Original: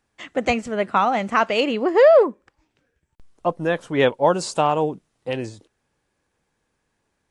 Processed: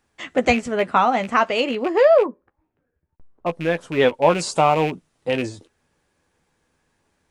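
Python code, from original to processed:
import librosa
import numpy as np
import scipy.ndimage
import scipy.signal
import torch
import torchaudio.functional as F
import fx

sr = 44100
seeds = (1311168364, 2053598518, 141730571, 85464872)

y = fx.rattle_buzz(x, sr, strikes_db=-28.0, level_db=-21.0)
y = fx.lowpass(y, sr, hz=1200.0, slope=12, at=(2.26, 3.46))
y = fx.rider(y, sr, range_db=4, speed_s=2.0)
y = fx.doubler(y, sr, ms=12.0, db=-9.0)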